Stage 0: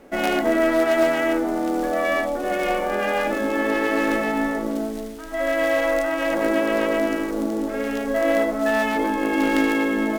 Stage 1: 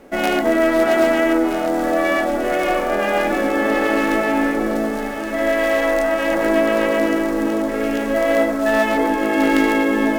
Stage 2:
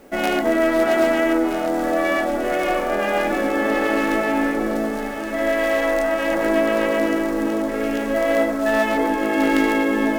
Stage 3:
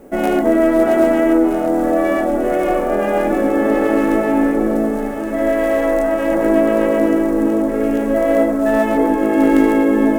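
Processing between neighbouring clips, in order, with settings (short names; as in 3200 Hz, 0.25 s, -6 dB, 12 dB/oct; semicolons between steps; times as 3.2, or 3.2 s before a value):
echo with dull and thin repeats by turns 0.636 s, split 1500 Hz, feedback 72%, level -7 dB; gain +3 dB
requantised 10-bit, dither triangular; gain -2 dB
EQ curve 420 Hz 0 dB, 4500 Hz -15 dB, 8300 Hz -6 dB; gain +6.5 dB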